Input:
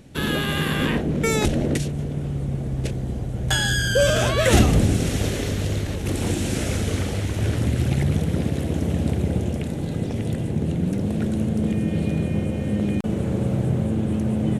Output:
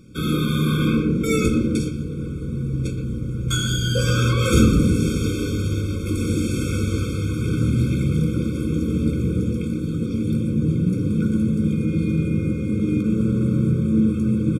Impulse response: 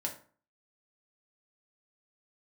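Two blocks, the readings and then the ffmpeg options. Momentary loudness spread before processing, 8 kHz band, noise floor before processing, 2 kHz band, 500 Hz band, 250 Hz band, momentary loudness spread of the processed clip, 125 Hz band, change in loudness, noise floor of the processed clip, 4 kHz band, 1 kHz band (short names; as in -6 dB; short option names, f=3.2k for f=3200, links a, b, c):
8 LU, -2.5 dB, -28 dBFS, -4.5 dB, -2.0 dB, +3.5 dB, 6 LU, +1.5 dB, +1.5 dB, -27 dBFS, -2.0 dB, -3.5 dB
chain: -filter_complex "[0:a]areverse,acompressor=mode=upward:threshold=-41dB:ratio=2.5,areverse,asplit=2[a][b];[b]adelay=120,highpass=300,lowpass=3.4k,asoftclip=type=hard:threshold=-11dB,volume=-7dB[c];[a][c]amix=inputs=2:normalize=0[d];[1:a]atrim=start_sample=2205[e];[d][e]afir=irnorm=-1:irlink=0,afftfilt=real='re*eq(mod(floor(b*sr/1024/530),2),0)':imag='im*eq(mod(floor(b*sr/1024/530),2),0)':win_size=1024:overlap=0.75"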